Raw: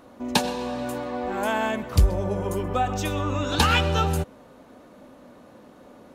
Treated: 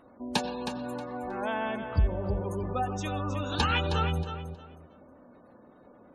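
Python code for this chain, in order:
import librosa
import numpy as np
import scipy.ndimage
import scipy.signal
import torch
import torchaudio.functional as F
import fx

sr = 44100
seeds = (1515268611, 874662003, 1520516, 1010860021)

y = fx.spec_gate(x, sr, threshold_db=-25, keep='strong')
y = fx.echo_feedback(y, sr, ms=316, feedback_pct=22, wet_db=-9)
y = y * 10.0 ** (-6.5 / 20.0)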